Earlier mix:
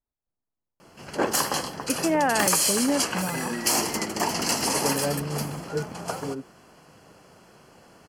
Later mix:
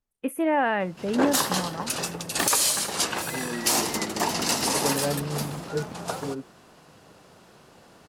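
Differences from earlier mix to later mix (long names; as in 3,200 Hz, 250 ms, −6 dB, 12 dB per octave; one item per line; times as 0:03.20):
first voice: entry −1.65 s
background: remove Butterworth band-reject 3,700 Hz, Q 5.6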